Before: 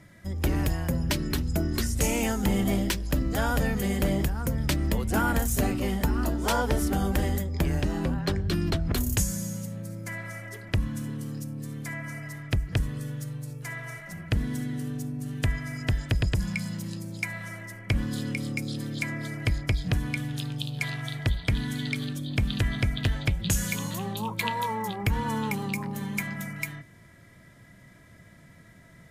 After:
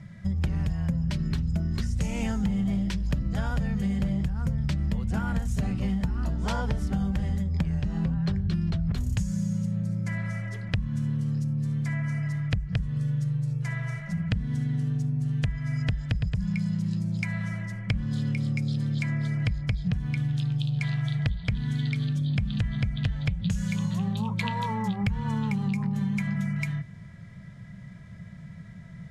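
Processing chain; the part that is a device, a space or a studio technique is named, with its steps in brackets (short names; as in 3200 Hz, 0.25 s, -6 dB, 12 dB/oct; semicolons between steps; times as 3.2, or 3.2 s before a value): jukebox (LPF 6100 Hz 12 dB/oct; resonant low shelf 230 Hz +7.5 dB, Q 3; compressor, threshold -24 dBFS, peak gain reduction 13.5 dB)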